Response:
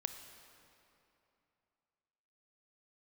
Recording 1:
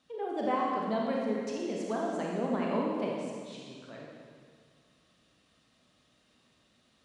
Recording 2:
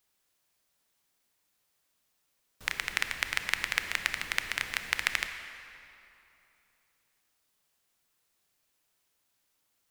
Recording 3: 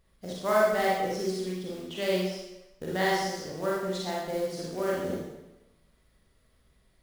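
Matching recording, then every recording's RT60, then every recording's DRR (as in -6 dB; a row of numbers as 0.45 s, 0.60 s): 2; 2.0 s, 2.9 s, 1.0 s; -3.0 dB, 7.5 dB, -5.0 dB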